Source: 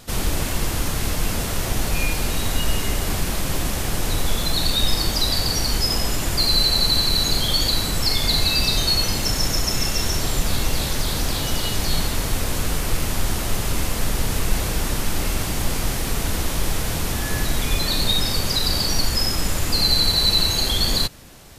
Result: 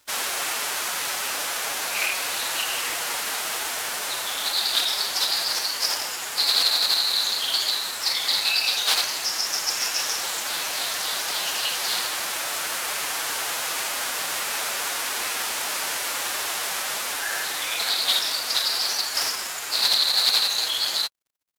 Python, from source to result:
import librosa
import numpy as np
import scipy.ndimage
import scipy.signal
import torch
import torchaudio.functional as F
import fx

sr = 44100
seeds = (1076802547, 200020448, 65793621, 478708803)

p1 = scipy.signal.sosfilt(scipy.signal.butter(2, 830.0, 'highpass', fs=sr, output='sos'), x)
p2 = fx.peak_eq(p1, sr, hz=1500.0, db=2.0, octaves=0.77)
p3 = fx.rider(p2, sr, range_db=10, speed_s=2.0)
p4 = p2 + (p3 * 10.0 ** (1.0 / 20.0))
p5 = np.sign(p4) * np.maximum(np.abs(p4) - 10.0 ** (-34.0 / 20.0), 0.0)
p6 = fx.pitch_keep_formants(p5, sr, semitones=3.5)
p7 = fx.doppler_dist(p6, sr, depth_ms=0.23)
y = p7 * 10.0 ** (-5.0 / 20.0)